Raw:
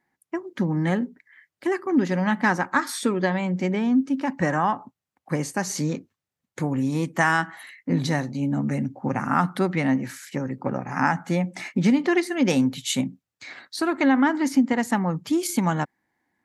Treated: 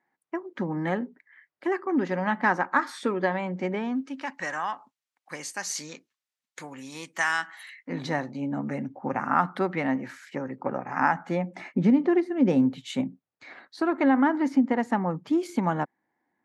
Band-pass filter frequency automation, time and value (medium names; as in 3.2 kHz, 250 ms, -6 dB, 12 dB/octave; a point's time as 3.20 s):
band-pass filter, Q 0.5
3.74 s 860 Hz
4.43 s 4.1 kHz
7.62 s 4.1 kHz
8.11 s 880 Hz
11.20 s 880 Hz
12.35 s 210 Hz
12.83 s 570 Hz